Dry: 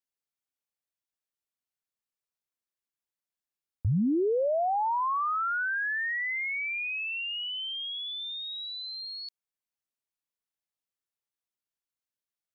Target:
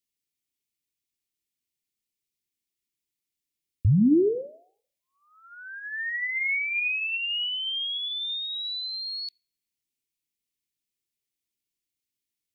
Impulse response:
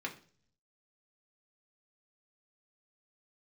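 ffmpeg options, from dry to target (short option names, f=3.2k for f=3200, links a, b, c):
-filter_complex "[0:a]asuperstop=centerf=930:order=8:qfactor=0.53,asplit=2[a][b];[b]lowshelf=f=460:g=-8.5[c];[1:a]atrim=start_sample=2205,lowpass=2.2k[d];[c][d]afir=irnorm=-1:irlink=0,volume=-6.5dB[e];[a][e]amix=inputs=2:normalize=0,volume=6dB"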